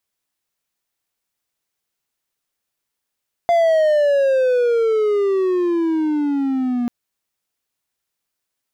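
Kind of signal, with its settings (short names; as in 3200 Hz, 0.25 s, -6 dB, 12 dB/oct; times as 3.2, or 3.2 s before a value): gliding synth tone triangle, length 3.39 s, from 693 Hz, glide -18.5 st, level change -6 dB, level -9.5 dB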